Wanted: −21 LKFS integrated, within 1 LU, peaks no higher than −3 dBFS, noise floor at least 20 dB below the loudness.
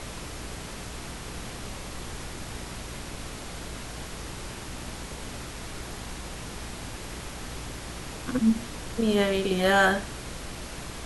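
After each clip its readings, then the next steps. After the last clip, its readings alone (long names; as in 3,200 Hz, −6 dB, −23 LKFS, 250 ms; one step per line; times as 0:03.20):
mains hum 60 Hz; hum harmonics up to 420 Hz; level of the hum −41 dBFS; background noise floor −39 dBFS; target noise floor −51 dBFS; integrated loudness −31.0 LKFS; sample peak −11.0 dBFS; target loudness −21.0 LKFS
→ hum removal 60 Hz, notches 7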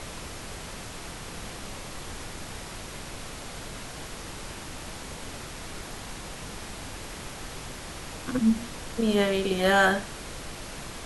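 mains hum none found; background noise floor −40 dBFS; target noise floor −52 dBFS
→ noise reduction from a noise print 12 dB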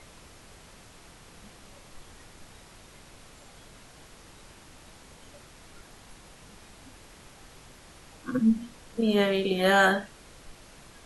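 background noise floor −52 dBFS; integrated loudness −25.0 LKFS; sample peak −10.5 dBFS; target loudness −21.0 LKFS
→ level +4 dB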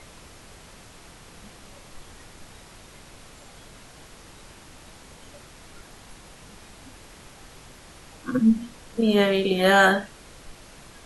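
integrated loudness −21.0 LKFS; sample peak −6.5 dBFS; background noise floor −48 dBFS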